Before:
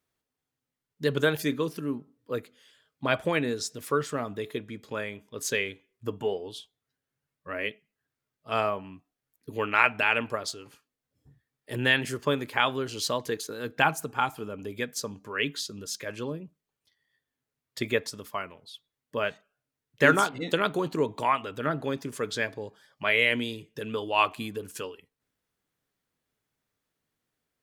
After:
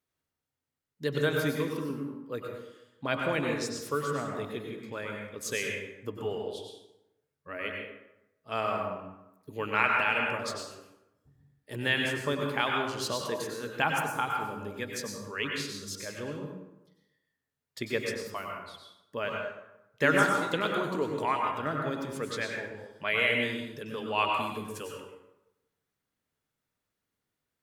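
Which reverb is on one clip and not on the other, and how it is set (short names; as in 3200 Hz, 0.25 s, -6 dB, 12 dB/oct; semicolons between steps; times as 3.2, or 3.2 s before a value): plate-style reverb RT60 0.94 s, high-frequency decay 0.6×, pre-delay 85 ms, DRR 0.5 dB; gain -5 dB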